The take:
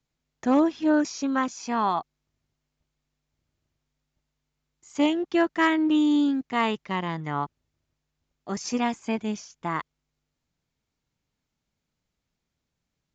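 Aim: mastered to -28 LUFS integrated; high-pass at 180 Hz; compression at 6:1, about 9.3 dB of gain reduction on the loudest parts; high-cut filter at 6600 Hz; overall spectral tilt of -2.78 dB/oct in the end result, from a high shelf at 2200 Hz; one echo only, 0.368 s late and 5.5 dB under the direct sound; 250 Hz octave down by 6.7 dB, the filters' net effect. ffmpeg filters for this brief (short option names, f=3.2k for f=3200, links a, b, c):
-af "highpass=180,lowpass=6.6k,equalizer=f=250:t=o:g=-8,highshelf=f=2.2k:g=6,acompressor=threshold=-27dB:ratio=6,aecho=1:1:368:0.531,volume=4.5dB"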